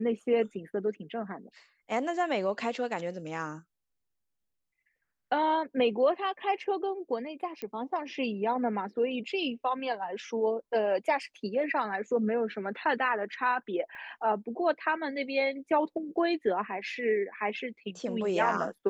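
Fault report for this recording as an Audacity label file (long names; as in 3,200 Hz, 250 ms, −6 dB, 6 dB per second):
7.620000	7.620000	click −23 dBFS
13.950000	13.950000	click −35 dBFS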